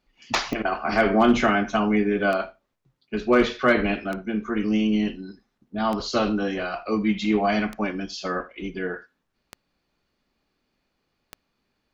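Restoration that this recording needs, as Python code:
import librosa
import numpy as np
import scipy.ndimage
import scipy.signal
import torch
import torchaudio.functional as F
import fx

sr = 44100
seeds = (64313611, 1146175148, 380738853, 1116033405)

y = fx.fix_declip(x, sr, threshold_db=-9.0)
y = fx.fix_declick_ar(y, sr, threshold=10.0)
y = fx.fix_echo_inverse(y, sr, delay_ms=79, level_db=-21.5)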